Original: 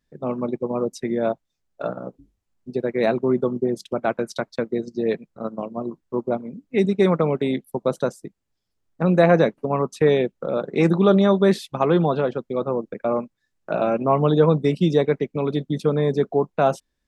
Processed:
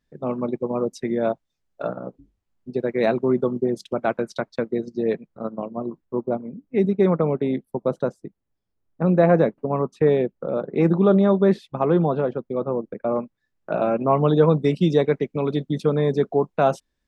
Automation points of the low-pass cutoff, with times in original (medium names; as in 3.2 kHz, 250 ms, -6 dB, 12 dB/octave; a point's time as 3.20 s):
low-pass 6 dB/octave
6.1 kHz
from 1.83 s 3.4 kHz
from 2.76 s 7.2 kHz
from 4.19 s 3.4 kHz
from 5.03 s 2.1 kHz
from 6.05 s 1.1 kHz
from 13.16 s 2.3 kHz
from 14.01 s 4.1 kHz
from 14.62 s 7.8 kHz